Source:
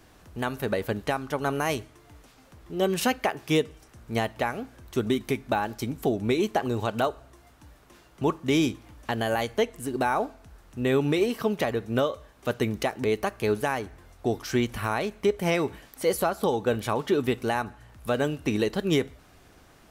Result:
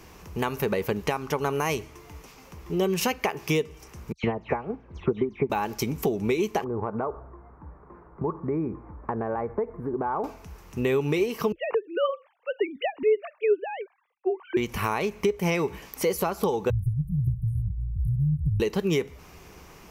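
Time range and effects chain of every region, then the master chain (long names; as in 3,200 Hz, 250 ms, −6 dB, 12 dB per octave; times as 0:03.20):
0:04.12–0:05.50: all-pass dispersion lows, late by 115 ms, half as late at 2,800 Hz + transient designer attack +6 dB, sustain −4 dB + head-to-tape spacing loss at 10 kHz 43 dB
0:06.64–0:10.24: inverse Chebyshev low-pass filter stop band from 2,900 Hz + downward compressor 2.5 to 1, threshold −32 dBFS
0:11.52–0:14.57: three sine waves on the formant tracks + multiband upward and downward expander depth 100%
0:16.70–0:18.60: linear-phase brick-wall band-stop 170–8,500 Hz + spectral tilt −4.5 dB per octave
whole clip: EQ curve with evenly spaced ripples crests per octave 0.79, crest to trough 7 dB; downward compressor 3 to 1, threshold −30 dBFS; level +6 dB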